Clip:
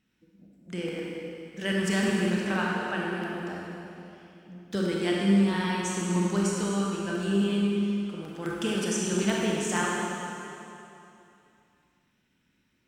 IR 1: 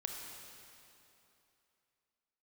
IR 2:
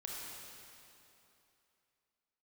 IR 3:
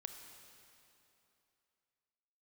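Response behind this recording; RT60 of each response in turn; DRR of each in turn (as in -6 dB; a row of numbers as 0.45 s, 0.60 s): 2; 2.9 s, 2.9 s, 2.9 s; 1.0 dB, -3.5 dB, 5.5 dB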